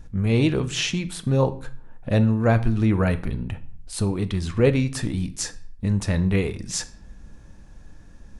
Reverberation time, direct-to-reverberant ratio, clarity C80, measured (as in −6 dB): 0.50 s, 11.5 dB, 21.0 dB